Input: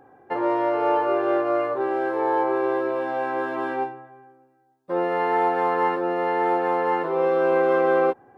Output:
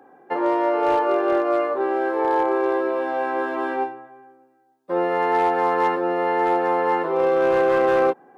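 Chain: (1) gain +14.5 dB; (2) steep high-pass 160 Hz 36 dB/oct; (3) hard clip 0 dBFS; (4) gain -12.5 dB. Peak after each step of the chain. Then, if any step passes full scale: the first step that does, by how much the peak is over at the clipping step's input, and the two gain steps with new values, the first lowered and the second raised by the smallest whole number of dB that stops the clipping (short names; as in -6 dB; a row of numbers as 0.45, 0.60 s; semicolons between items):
+5.0, +5.0, 0.0, -12.5 dBFS; step 1, 5.0 dB; step 1 +9.5 dB, step 4 -7.5 dB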